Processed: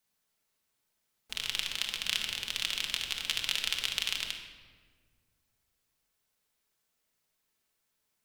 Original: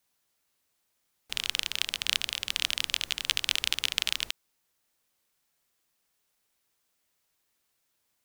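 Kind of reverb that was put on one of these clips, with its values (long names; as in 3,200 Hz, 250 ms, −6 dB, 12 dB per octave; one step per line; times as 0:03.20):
rectangular room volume 1,700 cubic metres, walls mixed, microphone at 1.5 metres
level −5 dB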